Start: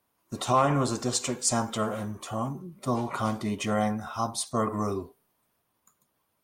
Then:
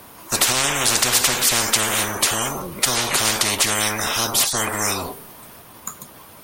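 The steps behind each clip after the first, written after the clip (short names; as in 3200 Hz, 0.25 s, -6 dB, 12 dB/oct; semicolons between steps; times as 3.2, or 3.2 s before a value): spectral compressor 10:1; gain +8.5 dB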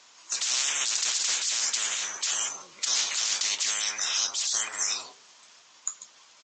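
differentiator; in parallel at +2 dB: negative-ratio compressor -24 dBFS, ratio -0.5; on the sum: downsampling 16000 Hz; gain -7 dB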